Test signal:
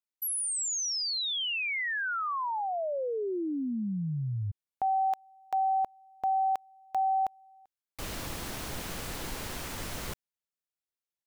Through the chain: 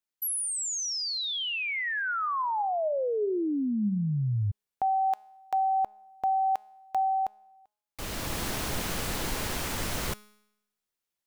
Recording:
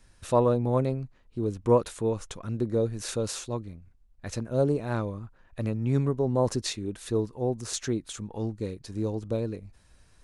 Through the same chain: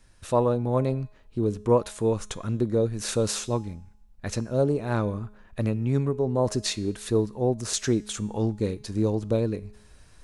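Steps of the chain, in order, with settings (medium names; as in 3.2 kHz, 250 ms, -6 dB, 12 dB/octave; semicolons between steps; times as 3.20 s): gain riding within 3 dB 0.5 s; feedback comb 210 Hz, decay 0.81 s, harmonics all, mix 50%; trim +8.5 dB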